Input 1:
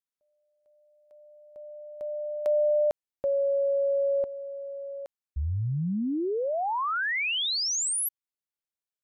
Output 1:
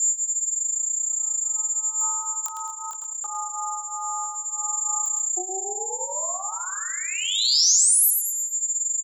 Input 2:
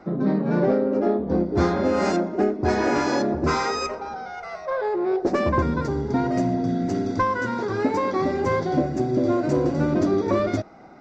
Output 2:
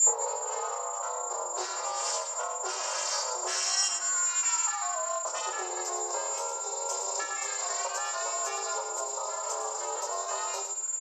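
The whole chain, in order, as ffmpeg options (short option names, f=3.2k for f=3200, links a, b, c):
-filter_complex "[0:a]aeval=exprs='val(0)+0.0112*sin(2*PI*6700*n/s)':c=same,adynamicequalizer=threshold=0.0112:dfrequency=690:dqfactor=1.4:tfrequency=690:tqfactor=1.4:attack=5:release=100:ratio=0.375:range=2:mode=boostabove:tftype=bell,afreqshift=480,crystalizer=i=1:c=0,lowshelf=f=380:g=8.5,acompressor=threshold=-28dB:ratio=10:attack=46:release=936:knee=1:detection=rms,aecho=1:1:109|218|327|436:0.398|0.139|0.0488|0.0171,flanger=delay=18.5:depth=5.6:speed=0.24,aexciter=amount=5.9:drive=6.2:freq=3k,aeval=exprs='val(0)*sin(2*PI*190*n/s)':c=same,acrossover=split=490|3900[a][b][c];[b]acompressor=threshold=-28dB:ratio=3:attack=0.17:release=217:knee=2.83:detection=peak[d];[a][d][c]amix=inputs=3:normalize=0,alimiter=level_in=9dB:limit=-1dB:release=50:level=0:latency=1,volume=-7dB"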